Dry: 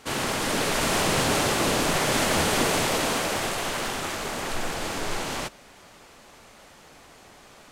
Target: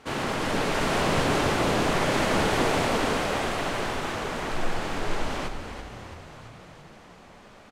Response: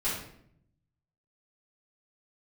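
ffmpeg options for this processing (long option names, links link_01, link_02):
-filter_complex "[0:a]lowpass=frequency=2400:poles=1,asplit=9[link_01][link_02][link_03][link_04][link_05][link_06][link_07][link_08][link_09];[link_02]adelay=334,afreqshift=-32,volume=-9.5dB[link_10];[link_03]adelay=668,afreqshift=-64,volume=-13.4dB[link_11];[link_04]adelay=1002,afreqshift=-96,volume=-17.3dB[link_12];[link_05]adelay=1336,afreqshift=-128,volume=-21.1dB[link_13];[link_06]adelay=1670,afreqshift=-160,volume=-25dB[link_14];[link_07]adelay=2004,afreqshift=-192,volume=-28.9dB[link_15];[link_08]adelay=2338,afreqshift=-224,volume=-32.8dB[link_16];[link_09]adelay=2672,afreqshift=-256,volume=-36.6dB[link_17];[link_01][link_10][link_11][link_12][link_13][link_14][link_15][link_16][link_17]amix=inputs=9:normalize=0,asplit=2[link_18][link_19];[1:a]atrim=start_sample=2205,adelay=84[link_20];[link_19][link_20]afir=irnorm=-1:irlink=0,volume=-20dB[link_21];[link_18][link_21]amix=inputs=2:normalize=0"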